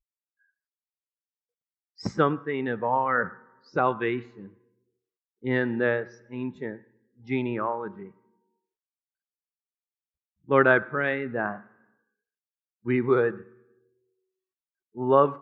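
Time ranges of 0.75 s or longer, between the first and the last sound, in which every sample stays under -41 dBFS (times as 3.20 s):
4.48–5.44 s
8.08–10.49 s
11.61–12.86 s
13.42–14.96 s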